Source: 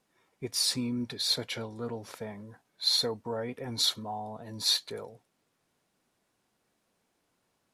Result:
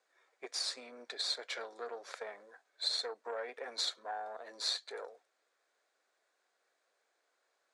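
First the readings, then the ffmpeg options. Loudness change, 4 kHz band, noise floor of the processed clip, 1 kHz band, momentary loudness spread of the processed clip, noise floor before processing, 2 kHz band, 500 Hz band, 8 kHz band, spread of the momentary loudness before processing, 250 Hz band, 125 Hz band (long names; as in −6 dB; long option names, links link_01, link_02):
−8.5 dB, −8.0 dB, −80 dBFS, −3.0 dB, 12 LU, −77 dBFS, −1.0 dB, −6.0 dB, −9.5 dB, 16 LU, −23.0 dB, below −40 dB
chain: -af "acompressor=threshold=-35dB:ratio=3,aeval=exprs='0.0794*(cos(1*acos(clip(val(0)/0.0794,-1,1)))-cos(1*PI/2))+0.0112*(cos(3*acos(clip(val(0)/0.0794,-1,1)))-cos(3*PI/2))+0.00501*(cos(6*acos(clip(val(0)/0.0794,-1,1)))-cos(6*PI/2))':channel_layout=same,highpass=frequency=470:width=0.5412,highpass=frequency=470:width=1.3066,equalizer=frequency=920:width_type=q:width=4:gain=-6,equalizer=frequency=1600:width_type=q:width=4:gain=4,equalizer=frequency=2900:width_type=q:width=4:gain=-7,equalizer=frequency=5500:width_type=q:width=4:gain=-5,lowpass=frequency=7600:width=0.5412,lowpass=frequency=7600:width=1.3066,volume=5dB"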